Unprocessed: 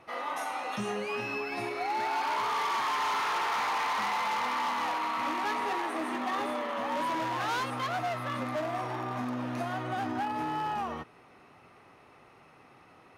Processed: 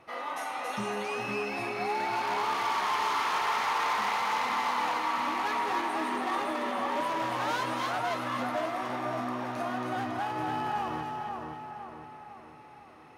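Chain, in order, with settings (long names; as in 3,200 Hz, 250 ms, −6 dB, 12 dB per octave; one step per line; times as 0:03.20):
echo with a time of its own for lows and highs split 1,700 Hz, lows 506 ms, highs 277 ms, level −3.5 dB
level −1 dB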